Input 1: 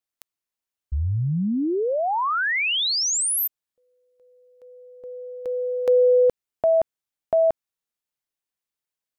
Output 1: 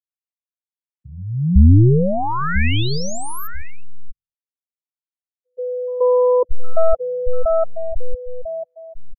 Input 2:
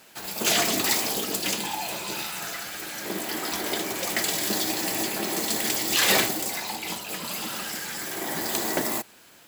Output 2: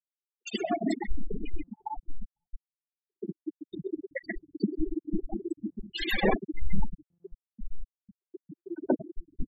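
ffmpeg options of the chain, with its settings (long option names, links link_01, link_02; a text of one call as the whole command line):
ffmpeg -i in.wav -filter_complex "[0:a]aeval=exprs='0.447*(cos(1*acos(clip(val(0)/0.447,-1,1)))-cos(1*PI/2))+0.00562*(cos(2*acos(clip(val(0)/0.447,-1,1)))-cos(2*PI/2))+0.00562*(cos(3*acos(clip(val(0)/0.447,-1,1)))-cos(3*PI/2))+0.0794*(cos(4*acos(clip(val(0)/0.447,-1,1)))-cos(4*PI/2))':channel_layout=same,asplit=2[link_01][link_02];[link_02]adelay=997,lowpass=frequency=2300:poles=1,volume=-9dB,asplit=2[link_03][link_04];[link_04]adelay=997,lowpass=frequency=2300:poles=1,volume=0.39,asplit=2[link_05][link_06];[link_06]adelay=997,lowpass=frequency=2300:poles=1,volume=0.39,asplit=2[link_07][link_08];[link_08]adelay=997,lowpass=frequency=2300:poles=1,volume=0.39[link_09];[link_03][link_05][link_07][link_09]amix=inputs=4:normalize=0[link_10];[link_01][link_10]amix=inputs=2:normalize=0,afftfilt=real='re*gte(hypot(re,im),0.2)':imag='im*gte(hypot(re,im),0.2)':win_size=1024:overlap=0.75,bass=frequency=250:gain=14,treble=frequency=4000:gain=-12,acrossover=split=170|2000[link_11][link_12][link_13];[link_12]adelay=130[link_14];[link_11]adelay=630[link_15];[link_15][link_14][link_13]amix=inputs=3:normalize=0,volume=1.5dB" out.wav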